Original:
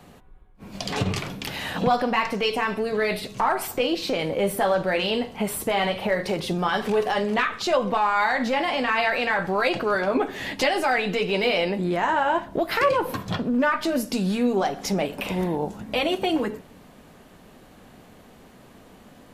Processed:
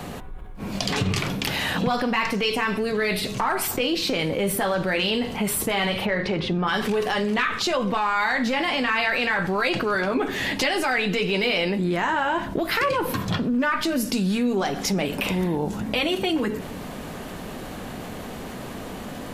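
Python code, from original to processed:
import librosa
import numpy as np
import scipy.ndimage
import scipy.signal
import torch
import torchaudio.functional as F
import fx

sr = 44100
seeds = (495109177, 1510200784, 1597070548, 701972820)

y = fx.lowpass(x, sr, hz=fx.line((6.05, 4400.0), (6.66, 2300.0)), slope=12, at=(6.05, 6.66), fade=0.02)
y = fx.dynamic_eq(y, sr, hz=670.0, q=1.1, threshold_db=-37.0, ratio=4.0, max_db=-7)
y = fx.env_flatten(y, sr, amount_pct=50)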